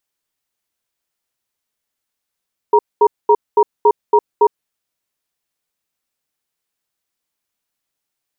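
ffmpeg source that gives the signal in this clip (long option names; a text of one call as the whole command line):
ffmpeg -f lavfi -i "aevalsrc='0.335*(sin(2*PI*420*t)+sin(2*PI*943*t))*clip(min(mod(t,0.28),0.06-mod(t,0.28))/0.005,0,1)':duration=1.77:sample_rate=44100" out.wav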